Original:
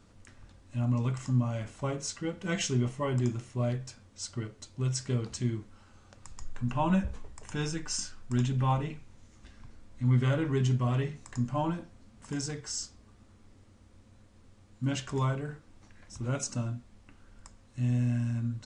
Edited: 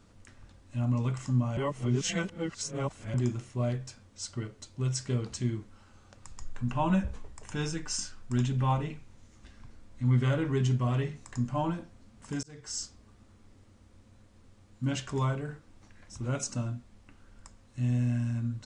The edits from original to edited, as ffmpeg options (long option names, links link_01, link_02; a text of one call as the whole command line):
ffmpeg -i in.wav -filter_complex "[0:a]asplit=4[link_01][link_02][link_03][link_04];[link_01]atrim=end=1.572[link_05];[link_02]atrim=start=1.568:end=3.142,asetpts=PTS-STARTPTS,areverse[link_06];[link_03]atrim=start=3.138:end=12.43,asetpts=PTS-STARTPTS,afade=type=out:start_time=9.288:duration=0.004:curve=hsin[link_07];[link_04]atrim=start=12.43,asetpts=PTS-STARTPTS,afade=type=in:duration=0.34[link_08];[link_05][link_06]acrossfade=duration=0.004:curve1=hsin:curve2=hsin[link_09];[link_07][link_08]concat=n=2:v=0:a=1[link_10];[link_09][link_10]acrossfade=duration=0.004:curve1=hsin:curve2=hsin" out.wav